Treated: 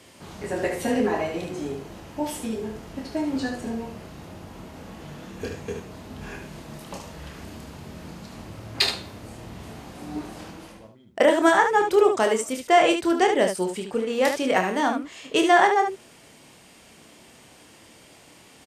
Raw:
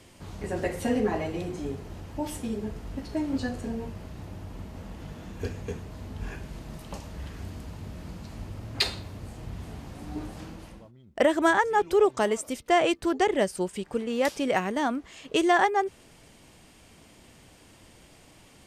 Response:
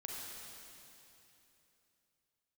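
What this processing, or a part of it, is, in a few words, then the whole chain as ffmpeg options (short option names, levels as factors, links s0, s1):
slapback doubling: -filter_complex "[0:a]asplit=3[s0][s1][s2];[s1]adelay=27,volume=0.473[s3];[s2]adelay=74,volume=0.447[s4];[s0][s3][s4]amix=inputs=3:normalize=0,highpass=f=230:p=1,volume=1.5"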